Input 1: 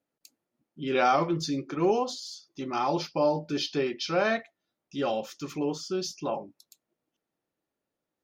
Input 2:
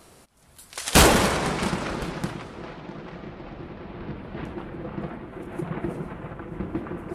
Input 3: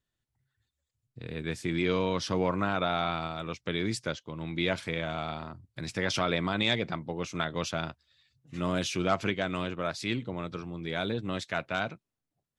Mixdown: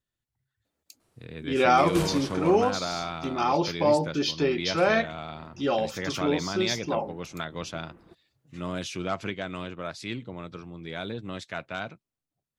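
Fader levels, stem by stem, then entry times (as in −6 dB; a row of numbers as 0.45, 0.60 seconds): +3.0, −19.5, −3.0 decibels; 0.65, 1.00, 0.00 seconds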